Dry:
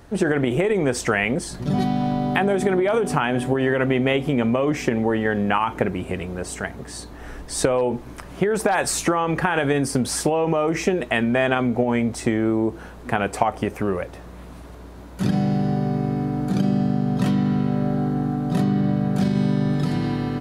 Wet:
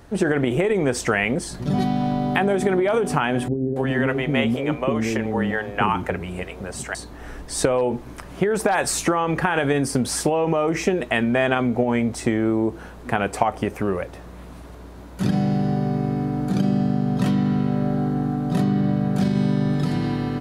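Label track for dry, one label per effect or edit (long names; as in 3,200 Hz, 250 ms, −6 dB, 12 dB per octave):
3.480000	6.950000	multiband delay without the direct sound lows, highs 280 ms, split 420 Hz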